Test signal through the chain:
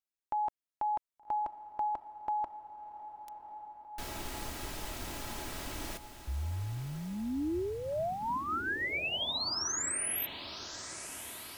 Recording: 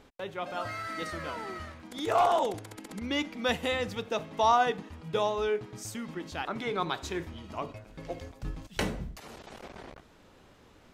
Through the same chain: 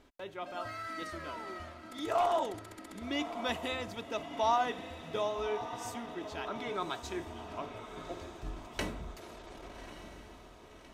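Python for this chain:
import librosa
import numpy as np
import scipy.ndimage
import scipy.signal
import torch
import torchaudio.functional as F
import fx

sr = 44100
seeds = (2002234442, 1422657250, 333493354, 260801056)

p1 = x + 0.39 * np.pad(x, (int(3.1 * sr / 1000.0), 0))[:len(x)]
p2 = p1 + fx.echo_diffused(p1, sr, ms=1183, feedback_pct=55, wet_db=-10.5, dry=0)
y = p2 * librosa.db_to_amplitude(-6.0)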